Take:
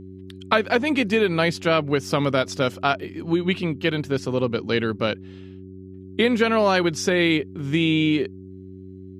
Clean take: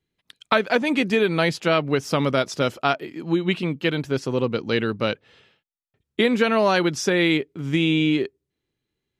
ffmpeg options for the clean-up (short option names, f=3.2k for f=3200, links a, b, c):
-af "bandreject=f=94.2:t=h:w=4,bandreject=f=188.4:t=h:w=4,bandreject=f=282.6:t=h:w=4,bandreject=f=376.8:t=h:w=4"